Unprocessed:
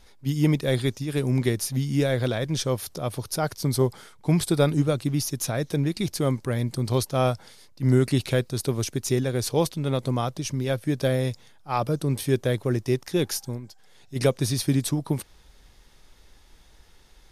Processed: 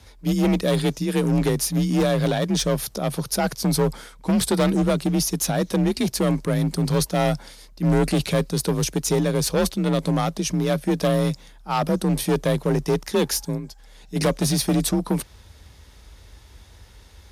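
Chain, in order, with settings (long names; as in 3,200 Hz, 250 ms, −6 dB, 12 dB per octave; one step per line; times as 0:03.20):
hard clipping −21.5 dBFS, distortion −9 dB
frequency shifter +37 Hz
level +5.5 dB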